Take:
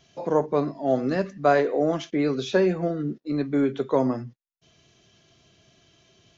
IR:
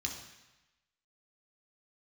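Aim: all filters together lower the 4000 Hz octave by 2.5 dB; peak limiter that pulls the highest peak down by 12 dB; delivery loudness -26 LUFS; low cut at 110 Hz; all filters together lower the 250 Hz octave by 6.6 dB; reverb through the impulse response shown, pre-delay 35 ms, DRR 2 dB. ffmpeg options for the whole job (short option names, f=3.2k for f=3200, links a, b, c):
-filter_complex "[0:a]highpass=110,equalizer=f=250:t=o:g=-8.5,equalizer=f=4k:t=o:g=-3,alimiter=limit=-21dB:level=0:latency=1,asplit=2[a][b];[1:a]atrim=start_sample=2205,adelay=35[c];[b][c]afir=irnorm=-1:irlink=0,volume=-3.5dB[d];[a][d]amix=inputs=2:normalize=0,volume=3.5dB"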